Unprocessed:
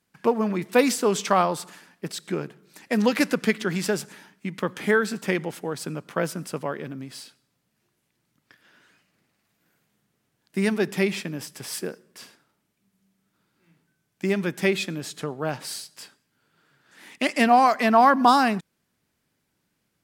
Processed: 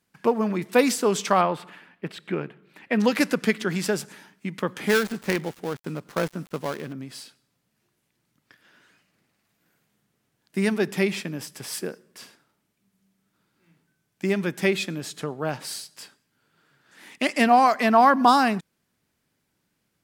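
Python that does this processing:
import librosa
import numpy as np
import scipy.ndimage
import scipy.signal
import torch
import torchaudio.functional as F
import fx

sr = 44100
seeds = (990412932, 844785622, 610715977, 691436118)

y = fx.high_shelf_res(x, sr, hz=4100.0, db=-13.5, q=1.5, at=(1.41, 3.0))
y = fx.dead_time(y, sr, dead_ms=0.17, at=(4.87, 6.93))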